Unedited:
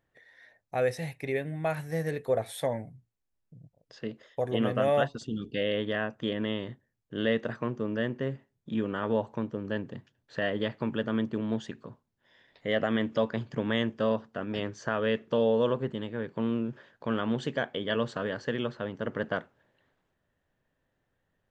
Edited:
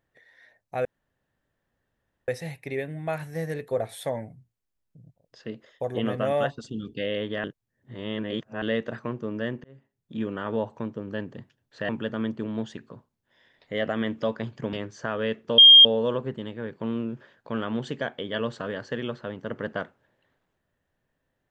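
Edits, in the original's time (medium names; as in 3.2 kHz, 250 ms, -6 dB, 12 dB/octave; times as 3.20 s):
0.85 s: insert room tone 1.43 s
6.01–7.19 s: reverse
8.21–8.78 s: fade in
10.46–10.83 s: delete
13.67–14.56 s: delete
15.41 s: add tone 3.22 kHz -7.5 dBFS 0.27 s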